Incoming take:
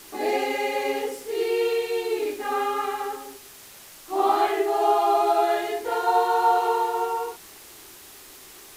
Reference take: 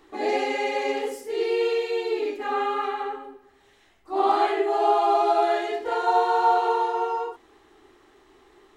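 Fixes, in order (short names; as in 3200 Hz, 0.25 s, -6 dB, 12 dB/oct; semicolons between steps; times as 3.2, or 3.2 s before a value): de-click; noise print and reduce 11 dB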